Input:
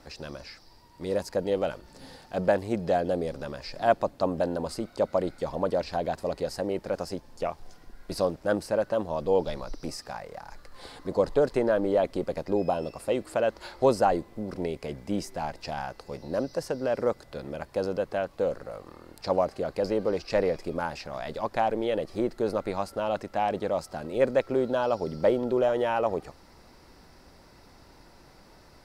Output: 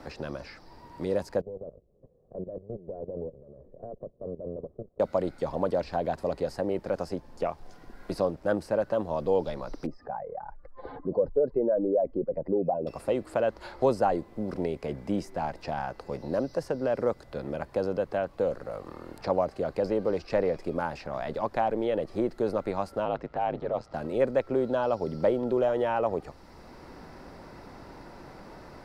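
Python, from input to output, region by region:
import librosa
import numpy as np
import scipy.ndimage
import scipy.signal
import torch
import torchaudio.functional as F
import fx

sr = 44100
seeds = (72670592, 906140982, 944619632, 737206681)

y = fx.chain(x, sr, fx.lower_of_two(delay_ms=1.7),
    fx.level_steps(step_db=16),
    fx.ladder_lowpass(hz=520.0, resonance_pct=40), at=(1.41, 5.0))
y = fx.chain(y, sr, fx.spec_expand(power=1.8),
    fx.lowpass(hz=1500.0, slope=12), at=(9.86, 12.87))
y = fx.chain(y, sr, fx.lowpass(hz=4300.0, slope=12),
    fx.ring_mod(carrier_hz=54.0), at=(23.05, 23.94))
y = fx.high_shelf(y, sr, hz=2800.0, db=-8.5)
y = fx.band_squash(y, sr, depth_pct=40)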